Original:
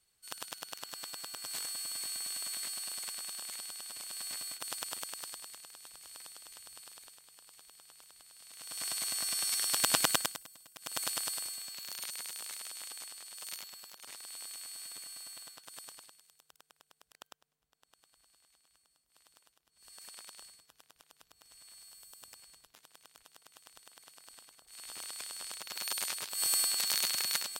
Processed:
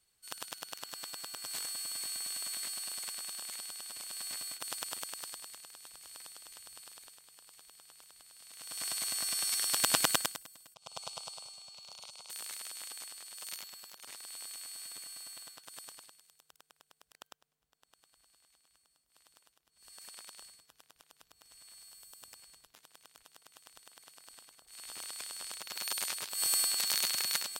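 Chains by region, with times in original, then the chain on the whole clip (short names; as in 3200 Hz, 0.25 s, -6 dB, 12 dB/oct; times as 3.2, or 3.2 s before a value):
10.74–12.3 air absorption 100 m + fixed phaser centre 730 Hz, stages 4
whole clip: dry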